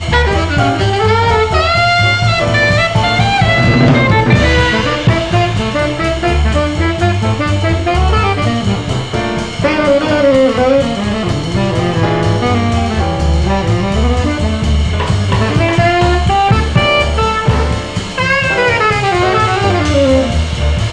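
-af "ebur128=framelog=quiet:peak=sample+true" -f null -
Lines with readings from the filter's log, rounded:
Integrated loudness:
  I:         -12.2 LUFS
  Threshold: -22.2 LUFS
Loudness range:
  LRA:         3.4 LU
  Threshold: -32.2 LUFS
  LRA low:   -13.7 LUFS
  LRA high:  -10.2 LUFS
Sample peak:
  Peak:       -1.5 dBFS
True peak:
  Peak:       -1.5 dBFS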